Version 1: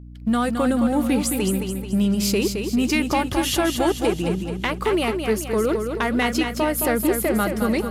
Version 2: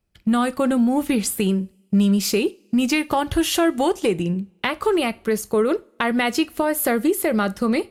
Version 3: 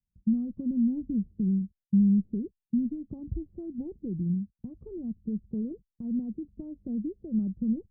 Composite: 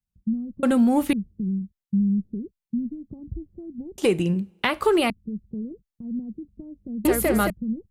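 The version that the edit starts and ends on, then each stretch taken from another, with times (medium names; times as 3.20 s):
3
0.63–1.13 s: from 2
3.98–5.10 s: from 2
7.05–7.50 s: from 1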